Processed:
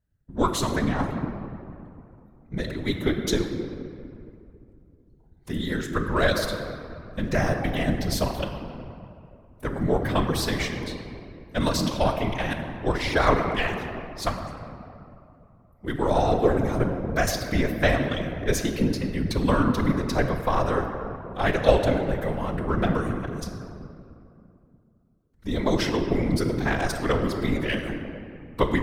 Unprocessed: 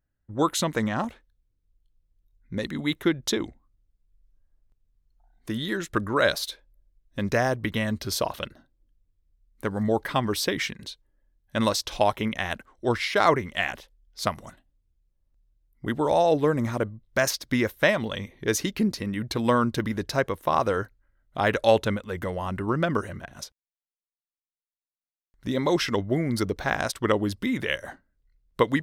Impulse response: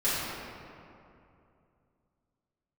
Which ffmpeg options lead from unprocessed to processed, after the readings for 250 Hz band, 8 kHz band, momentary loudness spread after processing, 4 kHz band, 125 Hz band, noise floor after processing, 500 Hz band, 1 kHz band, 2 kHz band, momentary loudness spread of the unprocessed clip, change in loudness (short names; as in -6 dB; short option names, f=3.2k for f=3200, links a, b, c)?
+1.5 dB, -2.0 dB, 16 LU, -1.0 dB, +4.0 dB, -57 dBFS, +0.5 dB, 0.0 dB, -0.5 dB, 14 LU, +0.5 dB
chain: -filter_complex "[0:a]aeval=exprs='if(lt(val(0),0),0.708*val(0),val(0))':c=same,asplit=2[a][b];[1:a]atrim=start_sample=2205,lowshelf=f=190:g=9.5[c];[b][c]afir=irnorm=-1:irlink=0,volume=-14.5dB[d];[a][d]amix=inputs=2:normalize=0,afftfilt=real='hypot(re,im)*cos(2*PI*random(0))':imag='hypot(re,im)*sin(2*PI*random(1))':win_size=512:overlap=0.75,volume=4dB"